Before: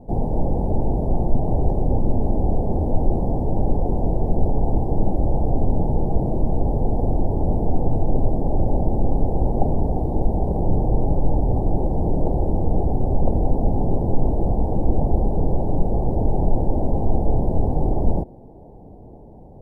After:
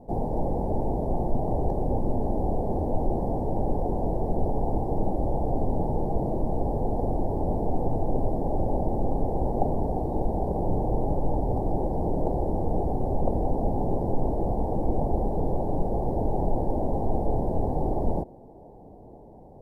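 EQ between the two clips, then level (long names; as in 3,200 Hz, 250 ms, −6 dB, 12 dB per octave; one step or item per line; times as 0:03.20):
low-shelf EQ 280 Hz −8.5 dB
0.0 dB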